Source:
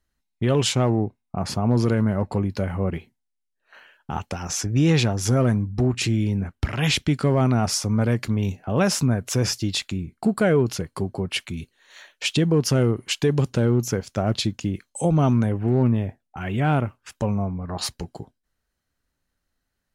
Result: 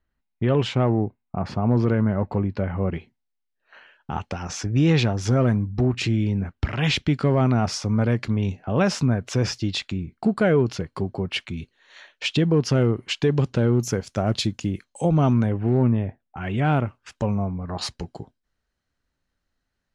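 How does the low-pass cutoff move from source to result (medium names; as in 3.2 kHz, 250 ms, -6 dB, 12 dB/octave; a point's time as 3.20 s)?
2.6 kHz
from 2.78 s 4.7 kHz
from 13.74 s 10 kHz
from 14.84 s 5.2 kHz
from 15.77 s 2.8 kHz
from 16.44 s 6.2 kHz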